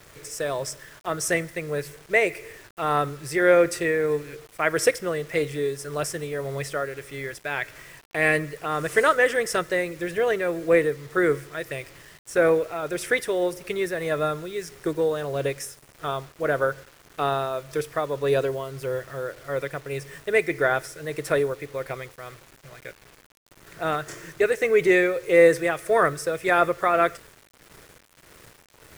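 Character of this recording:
tremolo triangle 1.7 Hz, depth 50%
a quantiser's noise floor 8 bits, dither none

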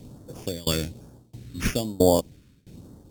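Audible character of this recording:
tremolo saw down 1.5 Hz, depth 95%
aliases and images of a low sample rate 4,000 Hz, jitter 0%
phaser sweep stages 2, 1.1 Hz, lowest notch 700–2,300 Hz
Opus

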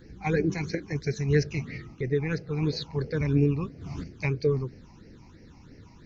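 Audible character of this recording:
phaser sweep stages 8, 3 Hz, lowest notch 450–1,100 Hz

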